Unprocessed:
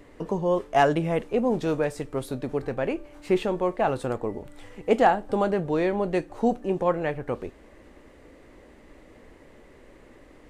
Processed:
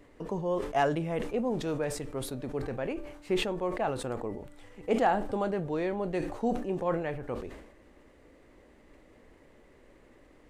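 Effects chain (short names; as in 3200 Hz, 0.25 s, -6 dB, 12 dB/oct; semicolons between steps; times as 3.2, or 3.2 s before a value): sustainer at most 67 dB/s; gain -7 dB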